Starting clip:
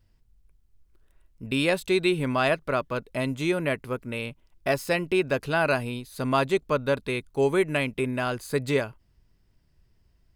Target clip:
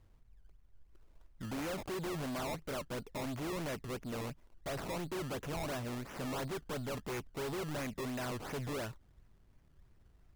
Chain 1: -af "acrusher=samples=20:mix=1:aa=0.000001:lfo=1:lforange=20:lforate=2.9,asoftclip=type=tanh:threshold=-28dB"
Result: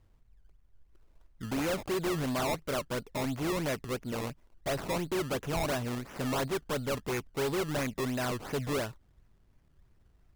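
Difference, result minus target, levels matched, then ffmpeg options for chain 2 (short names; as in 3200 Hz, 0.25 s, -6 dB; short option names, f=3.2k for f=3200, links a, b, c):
soft clip: distortion -4 dB
-af "acrusher=samples=20:mix=1:aa=0.000001:lfo=1:lforange=20:lforate=2.9,asoftclip=type=tanh:threshold=-37dB"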